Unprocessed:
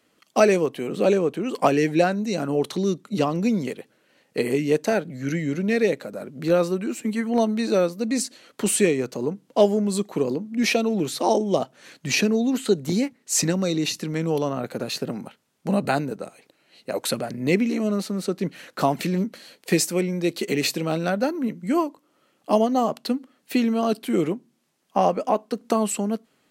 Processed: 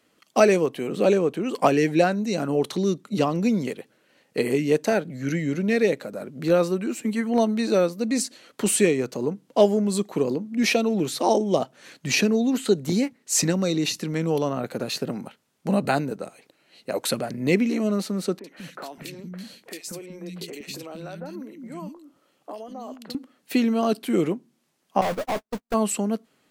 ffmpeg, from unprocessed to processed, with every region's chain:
-filter_complex "[0:a]asettb=1/sr,asplit=3[a][b][c];[a]atrim=end=18.394[d];[b]atrim=start=18.39:end=23.15,asetpts=PTS-STARTPTS,afade=t=in:d=0.004:c=qsin,afade=t=out:st=4.756:d=0.004:c=qsin,acompressor=threshold=-31dB:ratio=10:attack=3.2:release=140:knee=1:detection=peak,acrossover=split=260|1900[e][f][g];[g]adelay=50[h];[e]adelay=190[i];[i][f][h]amix=inputs=3:normalize=0,atrim=end_sample=209916[j];[c]atrim=start=23.146[k];[d][j]acrossfade=d=0.004:c1=hsin:c2=qsin[l];[l][k]acrossfade=d=0.004:c1=qsin:c2=hsin,asettb=1/sr,asplit=3[m][n][o];[m]atrim=end=25.014[p];[n]atrim=start=25.01:end=25.74,asetpts=PTS-STARTPTS,afade=t=in:d=0.004:c=qsin,afade=t=out:st=0.726:d=0.004:c=qsin,aeval=exprs='val(0)+0.5*0.0447*sgn(val(0))':c=same,aeval=exprs='(tanh(12.6*val(0)+0.3)-tanh(0.3))/12.6':c=same,agate=range=-58dB:threshold=-28dB:ratio=16:release=100:detection=peak[q];[o]atrim=start=25.736[r];[p][q]acrossfade=d=0.004:c1=hsin:c2=qsin[s];[s][r]acrossfade=d=0.004:c1=qsin:c2=hsin"

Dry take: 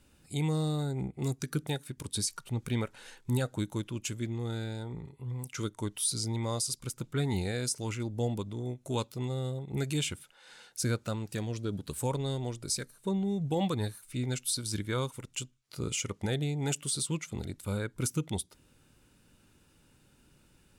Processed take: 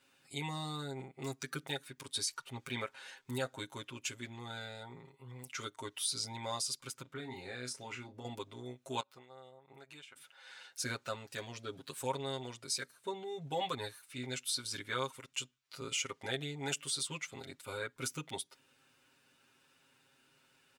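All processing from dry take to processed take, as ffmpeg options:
-filter_complex "[0:a]asettb=1/sr,asplit=3[a][b][c];[a]atrim=end=7.024[d];[b]atrim=start=7.02:end=8.25,asetpts=PTS-STARTPTS,afade=t=in:d=0.004:c=qsin,afade=t=out:st=1.226:d=0.004:c=qsin,highshelf=f=3.1k:g=-8.5,acompressor=threshold=-32dB:ratio=5:attack=3.2:release=140:knee=1:detection=peak,asplit=2[e][f];[f]adelay=32,volume=-7.5dB[g];[e][g]amix=inputs=2:normalize=0,atrim=end_sample=54243[h];[c]atrim=start=8.246[i];[d][h]acrossfade=d=0.004:c1=hsin:c2=qsin[j];[j][i]acrossfade=d=0.004:c1=qsin:c2=hsin,asettb=1/sr,asplit=3[k][l][m];[k]atrim=end=9.004[n];[l]atrim=start=9:end=10.16,asetpts=PTS-STARTPTS,afade=t=in:d=0.004:c=qsin,afade=t=out:st=1.156:d=0.004:c=qsin,acompressor=threshold=-43dB:ratio=20:attack=3.2:release=140:knee=1:detection=peak,agate=range=-12dB:threshold=-47dB:ratio=16:release=100:detection=peak,equalizer=f=1.1k:w=0.52:g=11.5[o];[m]atrim=start=10.156[p];[n][o]acrossfade=d=0.004:c1=hsin:c2=qsin[q];[q][p]acrossfade=d=0.004:c1=qsin:c2=hsin,highpass=f=1.5k:p=1,equalizer=f=11k:w=0.4:g=-12,aecho=1:1:7.5:0.92,volume=2.5dB"

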